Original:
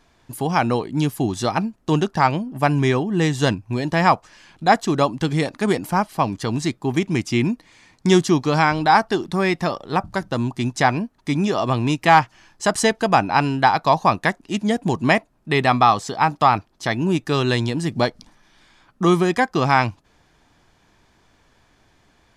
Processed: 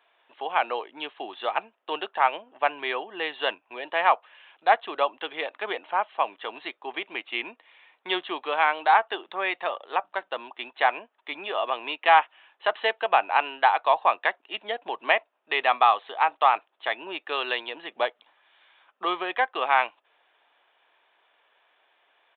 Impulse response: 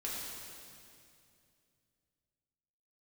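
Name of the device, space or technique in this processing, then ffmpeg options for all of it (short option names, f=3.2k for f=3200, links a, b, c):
musical greeting card: -af "aresample=8000,aresample=44100,highpass=f=510:w=0.5412,highpass=f=510:w=1.3066,equalizer=f=2.8k:t=o:w=0.38:g=5,volume=-4dB"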